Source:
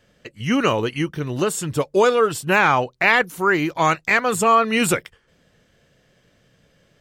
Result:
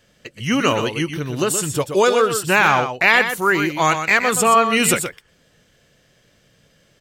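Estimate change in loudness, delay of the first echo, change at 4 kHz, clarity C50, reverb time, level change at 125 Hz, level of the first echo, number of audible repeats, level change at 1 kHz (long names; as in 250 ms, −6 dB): +2.0 dB, 123 ms, +4.5 dB, no reverb audible, no reverb audible, +0.5 dB, −8.5 dB, 1, +1.5 dB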